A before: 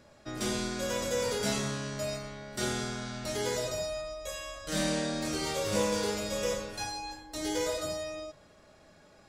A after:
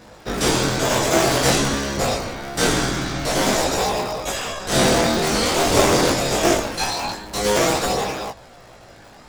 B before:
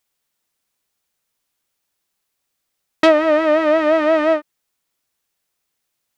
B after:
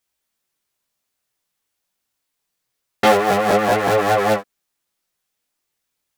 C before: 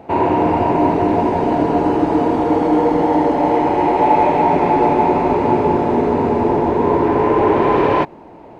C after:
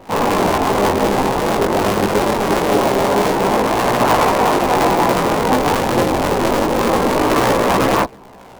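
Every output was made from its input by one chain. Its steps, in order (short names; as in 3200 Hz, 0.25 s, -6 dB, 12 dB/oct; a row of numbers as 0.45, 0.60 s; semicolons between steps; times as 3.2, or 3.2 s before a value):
cycle switcher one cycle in 3, inverted; chorus voices 2, 0.25 Hz, delay 19 ms, depth 4.2 ms; normalise peaks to -1.5 dBFS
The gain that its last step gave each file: +16.5, +1.5, +2.5 dB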